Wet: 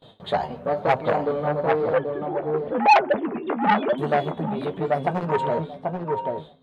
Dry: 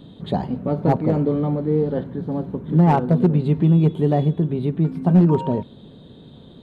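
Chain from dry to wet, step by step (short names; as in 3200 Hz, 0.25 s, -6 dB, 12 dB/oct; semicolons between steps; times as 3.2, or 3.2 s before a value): 1.93–3.98 sine-wave speech; gate with hold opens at -33 dBFS; resonant low shelf 410 Hz -12 dB, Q 1.5; darkening echo 0.786 s, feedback 15%, low-pass 2100 Hz, level -4 dB; flange 1 Hz, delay 7.3 ms, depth 6.3 ms, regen +41%; core saturation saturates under 1500 Hz; gain +7 dB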